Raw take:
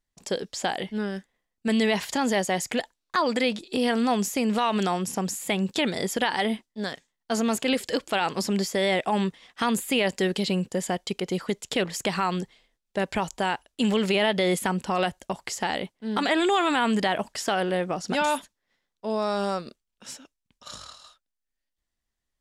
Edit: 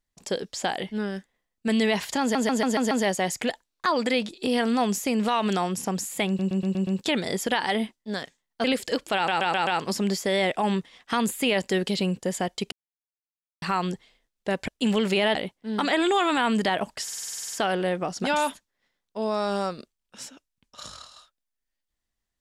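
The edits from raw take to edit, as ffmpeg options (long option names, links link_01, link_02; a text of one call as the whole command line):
ffmpeg -i in.wav -filter_complex "[0:a]asplit=30[link_01][link_02][link_03][link_04][link_05][link_06][link_07][link_08][link_09][link_10][link_11][link_12][link_13][link_14][link_15][link_16][link_17][link_18][link_19][link_20][link_21][link_22][link_23][link_24][link_25][link_26][link_27][link_28][link_29][link_30];[link_01]atrim=end=2.352[link_31];[link_02]atrim=start=2.208:end=2.352[link_32];[link_03]atrim=start=2.208:end=2.352[link_33];[link_04]atrim=start=2.208:end=2.352[link_34];[link_05]atrim=start=2.208:end=2.352[link_35];[link_06]atrim=start=2.208:end=5.692[link_36];[link_07]atrim=start=5.568:end=5.692[link_37];[link_08]atrim=start=5.568:end=5.692[link_38];[link_09]atrim=start=5.568:end=5.692[link_39];[link_10]atrim=start=5.568:end=5.692[link_40];[link_11]atrim=start=5.568:end=7.342[link_41];[link_12]atrim=start=7.648:end=8.292[link_42];[link_13]atrim=start=8.158:end=8.292[link_43];[link_14]atrim=start=8.158:end=8.292[link_44];[link_15]atrim=start=8.158:end=8.292[link_45];[link_16]atrim=start=8.158:end=11.21,asetpts=PTS-STARTPTS,afade=type=out:start_time=3.048:duration=0.004:curve=hsin[link_46];[link_17]atrim=start=11.21:end=12.11,asetpts=PTS-STARTPTS,volume=0[link_47];[link_18]atrim=start=12.11:end=13.172,asetpts=PTS-STARTPTS,afade=type=in:duration=0.004:curve=hsin[link_48];[link_19]atrim=start=13.658:end=14.332[link_49];[link_20]atrim=start=15.728:end=17.462[link_50];[link_21]atrim=start=17.408:end=17.462[link_51];[link_22]atrim=start=17.408:end=17.462[link_52];[link_23]atrim=start=17.408:end=17.462[link_53];[link_24]atrim=start=17.408:end=17.462[link_54];[link_25]atrim=start=17.408:end=17.462[link_55];[link_26]atrim=start=17.408:end=17.462[link_56];[link_27]atrim=start=17.408:end=17.462[link_57];[link_28]atrim=start=17.408:end=17.462[link_58];[link_29]atrim=start=17.408:end=17.462[link_59];[link_30]atrim=start=17.408[link_60];[link_31][link_32]acrossfade=duration=0.004:curve1=hsin:curve2=hsin[link_61];[link_61][link_33]acrossfade=duration=0.004:curve1=hsin:curve2=hsin[link_62];[link_62][link_34]acrossfade=duration=0.004:curve1=hsin:curve2=hsin[link_63];[link_63][link_35]acrossfade=duration=0.004:curve1=hsin:curve2=hsin[link_64];[link_64][link_36]acrossfade=duration=0.004:curve1=hsin:curve2=hsin[link_65];[link_65][link_37]acrossfade=duration=0.004:curve1=hsin:curve2=hsin[link_66];[link_66][link_38]acrossfade=duration=0.004:curve1=hsin:curve2=hsin[link_67];[link_67][link_39]acrossfade=duration=0.004:curve1=hsin:curve2=hsin[link_68];[link_68][link_40]acrossfade=duration=0.004:curve1=hsin:curve2=hsin[link_69];[link_69][link_41]acrossfade=duration=0.004:curve1=hsin:curve2=hsin[link_70];[link_70][link_42]acrossfade=duration=0.004:curve1=hsin:curve2=hsin[link_71];[link_71][link_43]acrossfade=duration=0.004:curve1=hsin:curve2=hsin[link_72];[link_72][link_44]acrossfade=duration=0.004:curve1=hsin:curve2=hsin[link_73];[link_73][link_45]acrossfade=duration=0.004:curve1=hsin:curve2=hsin[link_74];[link_46][link_47][link_48]concat=n=3:v=0:a=1[link_75];[link_74][link_75]acrossfade=duration=0.004:curve1=hsin:curve2=hsin[link_76];[link_76][link_49]acrossfade=duration=0.004:curve1=hsin:curve2=hsin[link_77];[link_77][link_50]acrossfade=duration=0.004:curve1=hsin:curve2=hsin[link_78];[link_78][link_51]acrossfade=duration=0.004:curve1=hsin:curve2=hsin[link_79];[link_79][link_52]acrossfade=duration=0.004:curve1=hsin:curve2=hsin[link_80];[link_80][link_53]acrossfade=duration=0.004:curve1=hsin:curve2=hsin[link_81];[link_81][link_54]acrossfade=duration=0.004:curve1=hsin:curve2=hsin[link_82];[link_82][link_55]acrossfade=duration=0.004:curve1=hsin:curve2=hsin[link_83];[link_83][link_56]acrossfade=duration=0.004:curve1=hsin:curve2=hsin[link_84];[link_84][link_57]acrossfade=duration=0.004:curve1=hsin:curve2=hsin[link_85];[link_85][link_58]acrossfade=duration=0.004:curve1=hsin:curve2=hsin[link_86];[link_86][link_59]acrossfade=duration=0.004:curve1=hsin:curve2=hsin[link_87];[link_87][link_60]acrossfade=duration=0.004:curve1=hsin:curve2=hsin" out.wav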